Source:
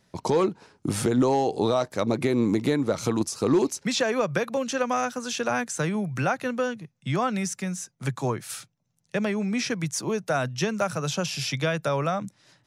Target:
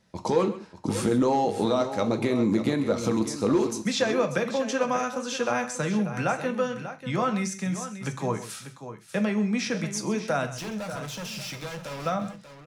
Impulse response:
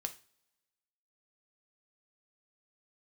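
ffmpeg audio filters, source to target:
-filter_complex "[0:a]highshelf=frequency=11000:gain=-8.5,asettb=1/sr,asplit=3[link_01][link_02][link_03];[link_01]atrim=end=10.524[link_04];[link_02]atrim=start=10.52:end=12.06,asetpts=PTS-STARTPTS,afade=type=in:duration=0.004:curve=qsin,afade=type=out:start_time=1.536:duration=0.004:curve=qsin,volume=33dB,asoftclip=hard,volume=-33dB[link_05];[link_03]atrim=start=12.056[link_06];[link_04][link_05]acrossfade=duration=0.004:curve1=hsin:curve2=qsin[link_07];[link_07][link_06]acrossfade=duration=0.004:curve1=qsin:curve2=hsin,aecho=1:1:131|590:0.178|0.266[link_08];[1:a]atrim=start_sample=2205,afade=type=out:start_time=0.15:duration=0.01,atrim=end_sample=7056[link_09];[link_08][link_09]afir=irnorm=-1:irlink=0"

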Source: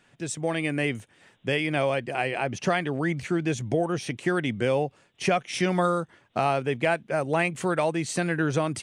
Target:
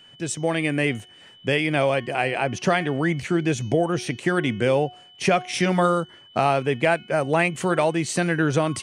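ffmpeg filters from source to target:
ffmpeg -i in.wav -af "bandreject=frequency=364.2:width_type=h:width=4,bandreject=frequency=728.4:width_type=h:width=4,bandreject=frequency=1092.6:width_type=h:width=4,bandreject=frequency=1456.8:width_type=h:width=4,bandreject=frequency=1821:width_type=h:width=4,bandreject=frequency=2185.2:width_type=h:width=4,bandreject=frequency=2549.4:width_type=h:width=4,bandreject=frequency=2913.6:width_type=h:width=4,bandreject=frequency=3277.8:width_type=h:width=4,bandreject=frequency=3642:width_type=h:width=4,bandreject=frequency=4006.2:width_type=h:width=4,bandreject=frequency=4370.4:width_type=h:width=4,bandreject=frequency=4734.6:width_type=h:width=4,bandreject=frequency=5098.8:width_type=h:width=4,bandreject=frequency=5463:width_type=h:width=4,bandreject=frequency=5827.2:width_type=h:width=4,bandreject=frequency=6191.4:width_type=h:width=4,bandreject=frequency=6555.6:width_type=h:width=4,aeval=exprs='val(0)+0.00251*sin(2*PI*3000*n/s)':channel_layout=same,volume=4dB" out.wav

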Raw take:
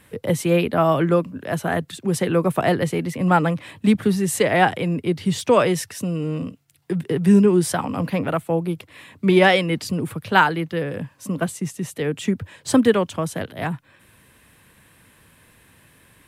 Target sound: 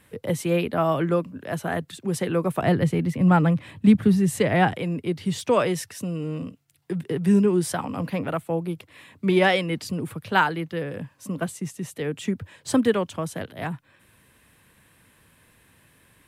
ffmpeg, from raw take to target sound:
ffmpeg -i in.wav -filter_complex "[0:a]asettb=1/sr,asplit=3[link_01][link_02][link_03];[link_01]atrim=end=2.624[link_04];[link_02]atrim=start=2.62:end=4.74,asetpts=PTS-STARTPTS,afade=type=in:duration=0.004:curve=qsin,afade=type=out:start_time=2.116:duration=0.004:curve=qsin,bass=frequency=250:gain=9,treble=frequency=4000:gain=-3[link_05];[link_03]atrim=start=4.736[link_06];[link_04][link_05]acrossfade=duration=0.004:curve1=hsin:curve2=qsin[link_07];[link_07][link_06]acrossfade=duration=0.004:curve1=qsin:curve2=hsin,volume=-4.5dB" out.wav

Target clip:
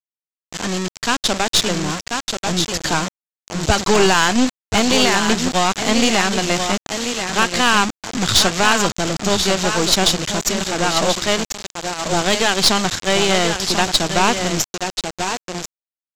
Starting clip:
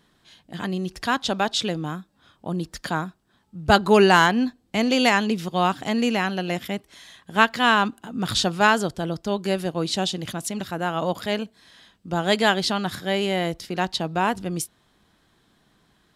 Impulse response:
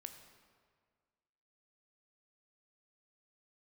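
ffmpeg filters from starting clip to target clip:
-af "alimiter=limit=-13dB:level=0:latency=1:release=139,highpass=frequency=52:width=0.5412,highpass=frequency=52:width=1.3066,asubboost=boost=3.5:cutoff=68,aecho=1:1:1038:0.398,dynaudnorm=framelen=280:gausssize=11:maxgain=4dB,aecho=1:1:1027|2054:0.126|0.0214,aresample=16000,acrusher=bits=4:mix=0:aa=0.000001,aresample=44100,highshelf=frequency=6200:gain=11.5,aeval=exprs='0.501*(cos(1*acos(clip(val(0)/0.501,-1,1)))-cos(1*PI/2))+0.0891*(cos(4*acos(clip(val(0)/0.501,-1,1)))-cos(4*PI/2))+0.00708*(cos(8*acos(clip(val(0)/0.501,-1,1)))-cos(8*PI/2))':channel_layout=same,volume=3.5dB"

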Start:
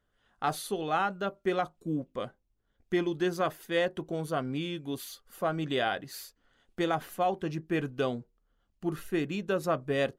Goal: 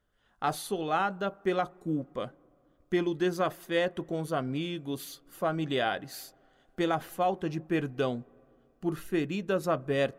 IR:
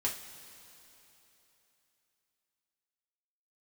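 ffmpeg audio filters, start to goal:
-filter_complex "[0:a]asplit=2[link_01][link_02];[link_02]lowpass=1400[link_03];[1:a]atrim=start_sample=2205,asetrate=52920,aresample=44100[link_04];[link_03][link_04]afir=irnorm=-1:irlink=0,volume=-17.5dB[link_05];[link_01][link_05]amix=inputs=2:normalize=0"

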